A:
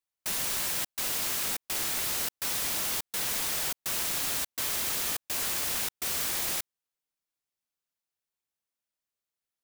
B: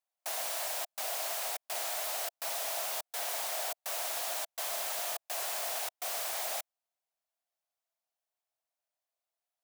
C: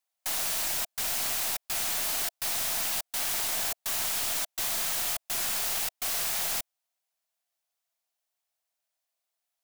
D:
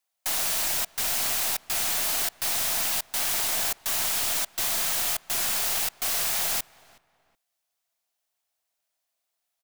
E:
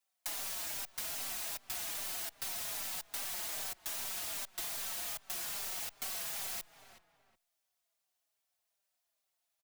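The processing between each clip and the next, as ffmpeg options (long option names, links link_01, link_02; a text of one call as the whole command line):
ffmpeg -i in.wav -af "aeval=exprs='(tanh(44.7*val(0)+0.65)-tanh(0.65))/44.7':channel_layout=same,highpass=frequency=670:width_type=q:width=5.3" out.wav
ffmpeg -i in.wav -af "tiltshelf=frequency=1200:gain=-4,aeval=exprs='(mod(21.1*val(0)+1,2)-1)/21.1':channel_layout=same,volume=3dB" out.wav
ffmpeg -i in.wav -filter_complex "[0:a]asplit=2[link_01][link_02];[link_02]adelay=372,lowpass=frequency=2000:poles=1,volume=-21dB,asplit=2[link_03][link_04];[link_04]adelay=372,lowpass=frequency=2000:poles=1,volume=0.31[link_05];[link_01][link_03][link_05]amix=inputs=3:normalize=0,volume=3.5dB" out.wav
ffmpeg -i in.wav -filter_complex "[0:a]acompressor=threshold=-34dB:ratio=12,asplit=2[link_01][link_02];[link_02]adelay=4.6,afreqshift=-2.5[link_03];[link_01][link_03]amix=inputs=2:normalize=1" out.wav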